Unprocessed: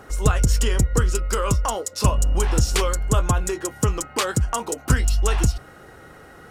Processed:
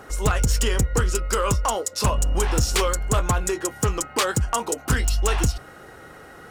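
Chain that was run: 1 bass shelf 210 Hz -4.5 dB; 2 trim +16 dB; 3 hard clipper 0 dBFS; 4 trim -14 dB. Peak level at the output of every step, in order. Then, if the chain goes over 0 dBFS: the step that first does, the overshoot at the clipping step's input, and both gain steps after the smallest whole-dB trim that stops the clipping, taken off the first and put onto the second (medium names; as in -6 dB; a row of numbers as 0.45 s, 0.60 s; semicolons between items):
-6.5 dBFS, +9.5 dBFS, 0.0 dBFS, -14.0 dBFS; step 2, 9.5 dB; step 2 +6 dB, step 4 -4 dB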